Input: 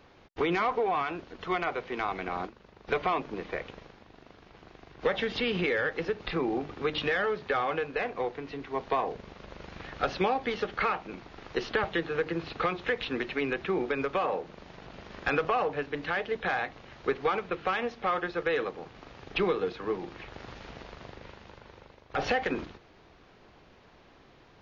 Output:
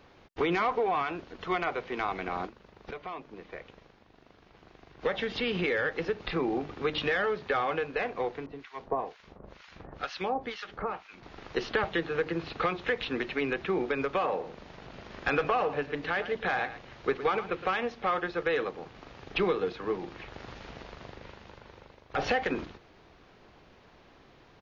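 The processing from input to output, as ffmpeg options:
ffmpeg -i in.wav -filter_complex "[0:a]asettb=1/sr,asplit=3[link_01][link_02][link_03];[link_01]atrim=end=8.464[link_04];[link_02]atrim=start=8.46:end=11.23,asetpts=PTS-STARTPTS,afade=type=in:duration=0.004:curve=qsin,afade=type=out:start_time=2.766:duration=0.004:curve=qsin,acrossover=split=1100[link_05][link_06];[link_05]aeval=exprs='val(0)*(1-1/2+1/2*cos(2*PI*2.1*n/s))':channel_layout=same[link_07];[link_06]aeval=exprs='val(0)*(1-1/2-1/2*cos(2*PI*2.1*n/s))':channel_layout=same[link_08];[link_07][link_08]amix=inputs=2:normalize=0[link_09];[link_03]atrim=start=11.226[link_10];[link_04][link_09]acrossfade=duration=0.004:curve1=hsin:curve2=qsin[link_11];[link_11][link_10]acrossfade=duration=0.004:curve1=qsin:curve2=hsin,asplit=3[link_12][link_13][link_14];[link_12]afade=type=out:start_time=14.39:duration=0.02[link_15];[link_13]aecho=1:1:113:0.237,afade=type=in:start_time=14.39:duration=0.02,afade=type=out:start_time=17.7:duration=0.02[link_16];[link_14]afade=type=in:start_time=17.7:duration=0.02[link_17];[link_15][link_16][link_17]amix=inputs=3:normalize=0,asplit=2[link_18][link_19];[link_18]atrim=end=2.91,asetpts=PTS-STARTPTS,afade=type=out:start_time=2.906:duration=0.004:curve=hsin:silence=0.223872[link_20];[link_19]atrim=start=2.91,asetpts=PTS-STARTPTS,afade=type=in:duration=3.06:silence=0.223872[link_21];[link_20][link_21]concat=n=2:v=0:a=1" out.wav

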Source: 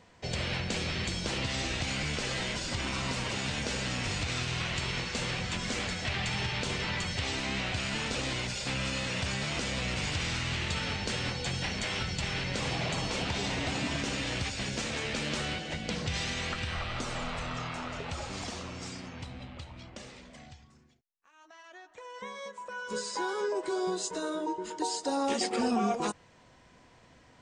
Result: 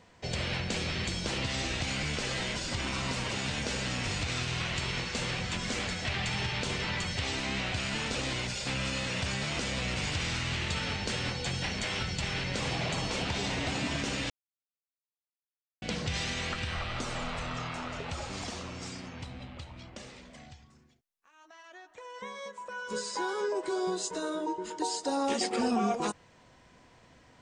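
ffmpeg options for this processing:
ffmpeg -i in.wav -filter_complex "[0:a]asplit=3[link_01][link_02][link_03];[link_01]atrim=end=14.3,asetpts=PTS-STARTPTS,afade=type=out:start_time=14.296:duration=0.004:curve=hsin[link_04];[link_02]atrim=start=14.3:end=15.82,asetpts=PTS-STARTPTS,volume=0[link_05];[link_03]atrim=start=15.82,asetpts=PTS-STARTPTS,afade=type=in:duration=0.004:curve=hsin[link_06];[link_04][link_05][link_06]concat=n=3:v=0:a=1" out.wav

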